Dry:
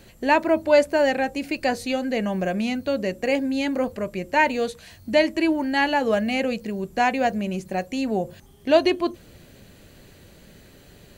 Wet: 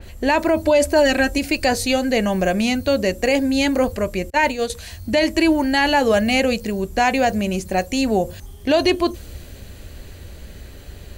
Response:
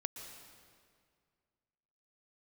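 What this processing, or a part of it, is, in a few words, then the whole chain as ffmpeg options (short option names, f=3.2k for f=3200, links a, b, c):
car stereo with a boomy subwoofer: -filter_complex "[0:a]asettb=1/sr,asplit=3[a][b][c];[a]atrim=end=0.654[d];[b]atrim=start=0.65:end=1.38,asetpts=PTS-STARTPTS,afade=t=in:d=0.004:c=qsin,afade=t=out:st=0.726:d=0.004:c=qsin,aecho=1:1:3.1:0.67,atrim=end_sample=32193[e];[c]atrim=start=1.376[f];[d][e]acrossfade=d=0.004:c1=hsin:c2=qsin[g];[g][f]acrossfade=d=0.004:c1=qsin:c2=hsin,asettb=1/sr,asplit=3[h][i][j];[h]atrim=end=4.304[k];[i]atrim=start=4.3:end=4.7,asetpts=PTS-STARTPTS,afade=t=in:d=0.004:c=qsin,afade=t=out:st=0.396:d=0.004:c=qsin,agate=range=-33dB:threshold=-18dB:ratio=3:detection=peak[l];[j]atrim=start=4.696[m];[k][l]acrossfade=d=0.004:c1=hsin:c2=qsin[n];[n][m]acrossfade=d=0.004:c1=qsin:c2=hsin,lowshelf=f=100:t=q:w=1.5:g=10,alimiter=limit=-14.5dB:level=0:latency=1:release=26,adynamicequalizer=threshold=0.00708:dfrequency=3900:dqfactor=0.7:tfrequency=3900:tqfactor=0.7:attack=5:release=100:ratio=0.375:range=3.5:mode=boostabove:tftype=highshelf,volume=6.5dB"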